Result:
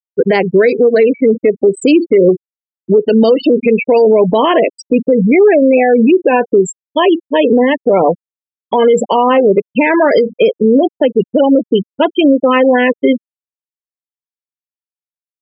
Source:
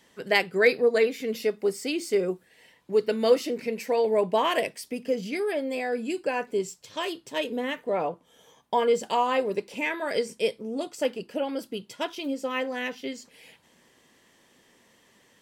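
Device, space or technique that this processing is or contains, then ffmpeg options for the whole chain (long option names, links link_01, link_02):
mastering chain: -filter_complex "[0:a]asettb=1/sr,asplit=3[link_01][link_02][link_03];[link_01]atrim=end=2.984[link_04];[link_02]atrim=start=2.98:end=4,asetpts=PTS-STARTPTS,afade=type=in:duration=0.004:curve=qsin,afade=type=out:start_time=1.016:duration=0.004:curve=qsin,adynamicequalizer=threshold=0.00501:dfrequency=2600:dqfactor=2.3:tfrequency=2600:tqfactor=2.3:attack=5:release=100:ratio=0.375:range=1.5:mode=boostabove:tftype=bell[link_05];[link_03]atrim=start=3.996[link_06];[link_04][link_05]acrossfade=duration=0.004:curve1=hsin:curve2=qsin[link_07];[link_07][link_06]acrossfade=duration=0.004:curve1=qsin:curve2=hsin,afftfilt=real='re*gte(hypot(re,im),0.0501)':imag='im*gte(hypot(re,im),0.0501)':win_size=1024:overlap=0.75,equalizer=frequency=500:width_type=o:width=2.3:gain=4,acrossover=split=390|1900[link_08][link_09][link_10];[link_08]acompressor=threshold=-27dB:ratio=4[link_11];[link_09]acompressor=threshold=-30dB:ratio=4[link_12];[link_10]acompressor=threshold=-44dB:ratio=4[link_13];[link_11][link_12][link_13]amix=inputs=3:normalize=0,acompressor=threshold=-27dB:ratio=2,alimiter=level_in=25.5dB:limit=-1dB:release=50:level=0:latency=1,volume=-1dB"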